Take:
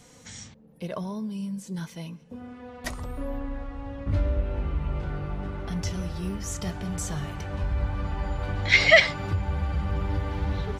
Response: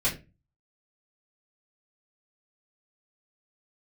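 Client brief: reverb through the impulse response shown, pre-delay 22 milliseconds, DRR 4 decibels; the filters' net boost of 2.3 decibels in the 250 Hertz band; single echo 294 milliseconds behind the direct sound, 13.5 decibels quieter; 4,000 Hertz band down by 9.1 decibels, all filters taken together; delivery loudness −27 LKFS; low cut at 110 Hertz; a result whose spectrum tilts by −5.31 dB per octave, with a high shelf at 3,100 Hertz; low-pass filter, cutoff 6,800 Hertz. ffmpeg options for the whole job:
-filter_complex "[0:a]highpass=110,lowpass=6800,equalizer=frequency=250:width_type=o:gain=4,highshelf=frequency=3100:gain=-6.5,equalizer=frequency=4000:width_type=o:gain=-7,aecho=1:1:294:0.211,asplit=2[link_01][link_02];[1:a]atrim=start_sample=2205,adelay=22[link_03];[link_02][link_03]afir=irnorm=-1:irlink=0,volume=-13.5dB[link_04];[link_01][link_04]amix=inputs=2:normalize=0,volume=1dB"

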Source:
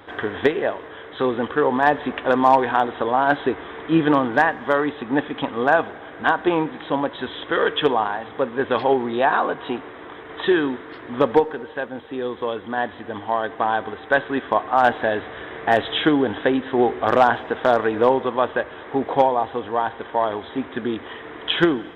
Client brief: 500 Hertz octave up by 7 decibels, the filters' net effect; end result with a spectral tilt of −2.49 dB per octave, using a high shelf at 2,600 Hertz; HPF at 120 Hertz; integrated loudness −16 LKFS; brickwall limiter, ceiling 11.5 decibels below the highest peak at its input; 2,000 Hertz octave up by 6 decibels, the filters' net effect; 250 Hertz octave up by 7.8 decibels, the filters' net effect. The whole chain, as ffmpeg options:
ffmpeg -i in.wav -af "highpass=120,equalizer=frequency=250:width_type=o:gain=7.5,equalizer=frequency=500:width_type=o:gain=6,equalizer=frequency=2000:width_type=o:gain=5,highshelf=frequency=2600:gain=6.5,volume=3.5dB,alimiter=limit=-4.5dB:level=0:latency=1" out.wav

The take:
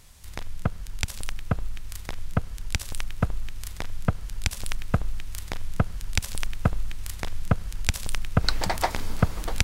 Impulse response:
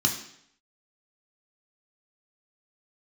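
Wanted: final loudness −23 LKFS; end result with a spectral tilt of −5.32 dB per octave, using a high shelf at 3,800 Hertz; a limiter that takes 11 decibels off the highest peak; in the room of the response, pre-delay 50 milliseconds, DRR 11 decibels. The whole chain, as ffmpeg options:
-filter_complex "[0:a]highshelf=frequency=3800:gain=-8.5,alimiter=limit=-15.5dB:level=0:latency=1,asplit=2[link_01][link_02];[1:a]atrim=start_sample=2205,adelay=50[link_03];[link_02][link_03]afir=irnorm=-1:irlink=0,volume=-20.5dB[link_04];[link_01][link_04]amix=inputs=2:normalize=0,volume=12.5dB"

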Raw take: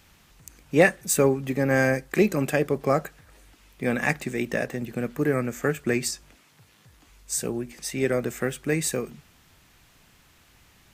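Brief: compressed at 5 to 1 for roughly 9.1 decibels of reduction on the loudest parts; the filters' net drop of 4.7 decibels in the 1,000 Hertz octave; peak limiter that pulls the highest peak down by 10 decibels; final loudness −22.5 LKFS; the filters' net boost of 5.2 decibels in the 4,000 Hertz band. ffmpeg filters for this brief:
ffmpeg -i in.wav -af "equalizer=frequency=1000:width_type=o:gain=-7.5,equalizer=frequency=4000:width_type=o:gain=7,acompressor=threshold=-24dB:ratio=5,volume=11dB,alimiter=limit=-11dB:level=0:latency=1" out.wav

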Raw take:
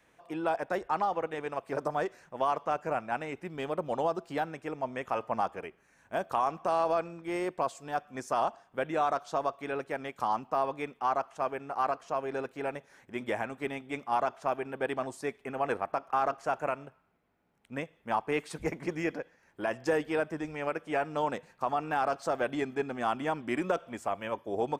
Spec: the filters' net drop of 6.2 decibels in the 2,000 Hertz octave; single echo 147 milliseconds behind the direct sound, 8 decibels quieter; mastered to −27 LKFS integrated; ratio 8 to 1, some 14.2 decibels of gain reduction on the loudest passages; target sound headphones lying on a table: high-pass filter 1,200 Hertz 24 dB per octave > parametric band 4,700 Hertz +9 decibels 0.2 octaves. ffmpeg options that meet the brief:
ffmpeg -i in.wav -af "equalizer=frequency=2000:width_type=o:gain=-8,acompressor=threshold=-40dB:ratio=8,highpass=frequency=1200:width=0.5412,highpass=frequency=1200:width=1.3066,equalizer=frequency=4700:width_type=o:width=0.2:gain=9,aecho=1:1:147:0.398,volume=27.5dB" out.wav

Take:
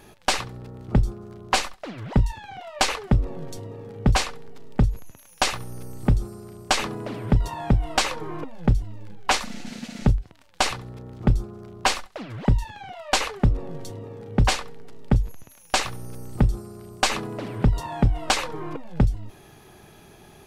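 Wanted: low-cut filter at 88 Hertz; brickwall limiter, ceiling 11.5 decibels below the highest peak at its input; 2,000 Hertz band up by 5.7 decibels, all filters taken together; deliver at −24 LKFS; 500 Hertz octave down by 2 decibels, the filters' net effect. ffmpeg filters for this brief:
ffmpeg -i in.wav -af "highpass=88,equalizer=frequency=500:width_type=o:gain=-3,equalizer=frequency=2000:width_type=o:gain=7.5,volume=6dB,alimiter=limit=-9.5dB:level=0:latency=1" out.wav

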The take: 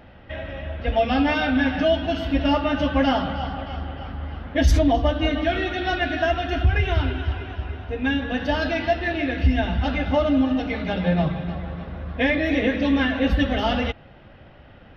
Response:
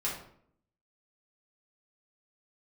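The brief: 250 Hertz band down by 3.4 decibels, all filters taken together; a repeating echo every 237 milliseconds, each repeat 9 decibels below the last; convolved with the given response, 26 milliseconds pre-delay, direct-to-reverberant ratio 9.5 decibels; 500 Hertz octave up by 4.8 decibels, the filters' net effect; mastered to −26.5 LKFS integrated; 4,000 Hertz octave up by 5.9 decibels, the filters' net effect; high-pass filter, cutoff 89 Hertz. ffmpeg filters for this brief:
-filter_complex "[0:a]highpass=89,equalizer=frequency=250:width_type=o:gain=-6,equalizer=frequency=500:width_type=o:gain=7.5,equalizer=frequency=4000:width_type=o:gain=8.5,aecho=1:1:237|474|711|948:0.355|0.124|0.0435|0.0152,asplit=2[link_01][link_02];[1:a]atrim=start_sample=2205,adelay=26[link_03];[link_02][link_03]afir=irnorm=-1:irlink=0,volume=-14.5dB[link_04];[link_01][link_04]amix=inputs=2:normalize=0,volume=-6dB"

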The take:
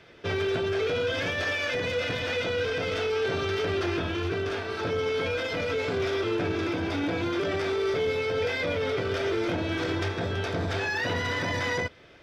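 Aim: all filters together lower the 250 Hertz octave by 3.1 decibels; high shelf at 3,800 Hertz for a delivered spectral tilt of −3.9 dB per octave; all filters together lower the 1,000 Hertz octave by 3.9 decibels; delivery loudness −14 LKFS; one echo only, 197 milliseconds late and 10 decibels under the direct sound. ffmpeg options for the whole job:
ffmpeg -i in.wav -af "equalizer=frequency=250:width_type=o:gain=-4.5,equalizer=frequency=1000:width_type=o:gain=-4.5,highshelf=frequency=3800:gain=-6.5,aecho=1:1:197:0.316,volume=16dB" out.wav

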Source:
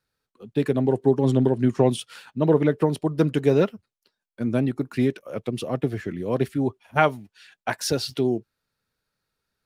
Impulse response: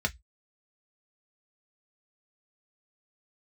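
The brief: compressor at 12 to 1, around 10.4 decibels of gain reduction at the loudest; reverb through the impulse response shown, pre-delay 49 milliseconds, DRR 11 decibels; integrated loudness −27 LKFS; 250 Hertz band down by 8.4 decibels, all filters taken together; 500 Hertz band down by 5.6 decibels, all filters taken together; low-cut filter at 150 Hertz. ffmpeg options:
-filter_complex "[0:a]highpass=150,equalizer=frequency=250:width_type=o:gain=-8.5,equalizer=frequency=500:width_type=o:gain=-4,acompressor=threshold=-25dB:ratio=12,asplit=2[link_01][link_02];[1:a]atrim=start_sample=2205,adelay=49[link_03];[link_02][link_03]afir=irnorm=-1:irlink=0,volume=-18.5dB[link_04];[link_01][link_04]amix=inputs=2:normalize=0,volume=5.5dB"

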